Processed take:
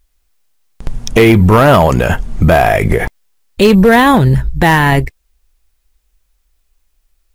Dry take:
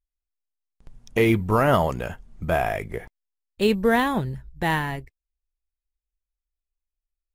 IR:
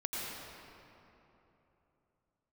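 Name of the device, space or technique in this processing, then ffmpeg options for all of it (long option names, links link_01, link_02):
loud club master: -af "acompressor=threshold=-26dB:ratio=1.5,asoftclip=type=hard:threshold=-18.5dB,alimiter=level_in=27.5dB:limit=-1dB:release=50:level=0:latency=1,volume=-1dB"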